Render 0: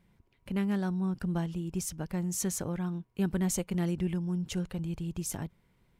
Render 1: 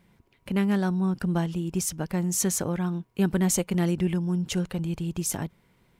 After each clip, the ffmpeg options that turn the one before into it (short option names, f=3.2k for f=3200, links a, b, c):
-af "lowshelf=f=100:g=-8.5,volume=7.5dB"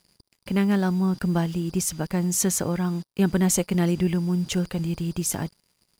-af "aeval=exprs='val(0)+0.00178*sin(2*PI*4800*n/s)':c=same,acrusher=bits=7:mix=0:aa=0.5,volume=2.5dB"